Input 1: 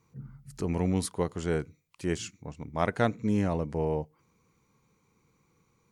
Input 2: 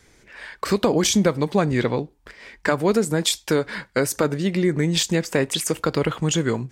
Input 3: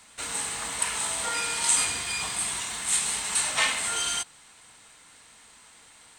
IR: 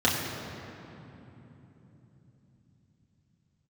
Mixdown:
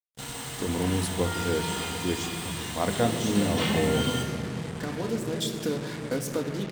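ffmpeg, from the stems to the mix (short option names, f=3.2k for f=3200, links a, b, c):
-filter_complex "[0:a]bandreject=f=50:t=h:w=6,bandreject=f=100:t=h:w=6,bandreject=f=150:t=h:w=6,acrusher=bits=7:mix=0:aa=0.5,volume=-1dB,asplit=3[a][b][c];[b]volume=-20.5dB[d];[1:a]acompressor=threshold=-45dB:ratio=1.5,adelay=2150,volume=-3dB,asplit=2[e][f];[f]volume=-16dB[g];[2:a]acrossover=split=3600[h][i];[i]acompressor=threshold=-35dB:ratio=4:attack=1:release=60[j];[h][j]amix=inputs=2:normalize=0,volume=-8.5dB,asplit=2[k][l];[l]volume=-8dB[m];[c]apad=whole_len=391076[n];[e][n]sidechaincompress=threshold=-39dB:ratio=8:attack=16:release=1460[o];[3:a]atrim=start_sample=2205[p];[d][g][m]amix=inputs=3:normalize=0[q];[q][p]afir=irnorm=-1:irlink=0[r];[a][o][k][r]amix=inputs=4:normalize=0,equalizer=f=1.4k:t=o:w=1.1:g=-4,acrusher=bits=5:mix=0:aa=0.5"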